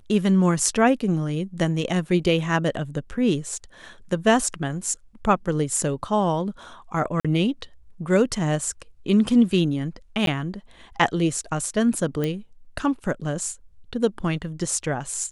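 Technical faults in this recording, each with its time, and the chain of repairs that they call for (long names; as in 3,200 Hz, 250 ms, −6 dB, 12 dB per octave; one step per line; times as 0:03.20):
0:07.20–0:07.25: drop-out 46 ms
0:10.26–0:10.27: drop-out 12 ms
0:12.24: click −13 dBFS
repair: click removal
repair the gap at 0:07.20, 46 ms
repair the gap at 0:10.26, 12 ms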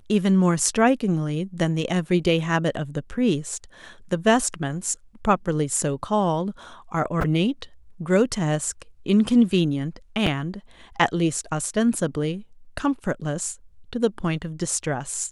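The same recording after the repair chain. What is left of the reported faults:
none of them is left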